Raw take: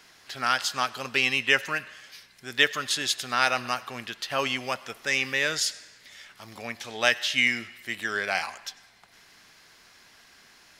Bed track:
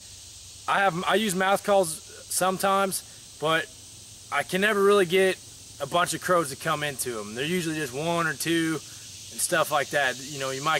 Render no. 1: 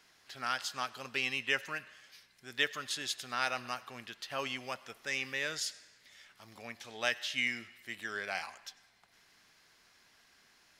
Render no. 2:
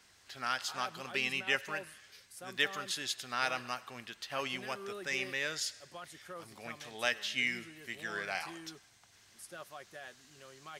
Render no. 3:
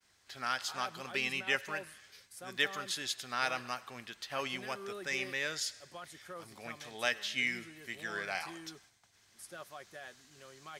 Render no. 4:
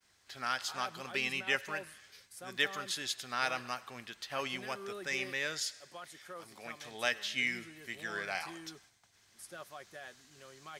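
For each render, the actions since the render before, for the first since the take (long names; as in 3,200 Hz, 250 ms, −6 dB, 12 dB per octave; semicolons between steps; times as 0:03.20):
level −10 dB
mix in bed track −24.5 dB
notch filter 2,800 Hz, Q 24; downward expander −58 dBFS
0:05.66–0:06.84: low-shelf EQ 130 Hz −11.5 dB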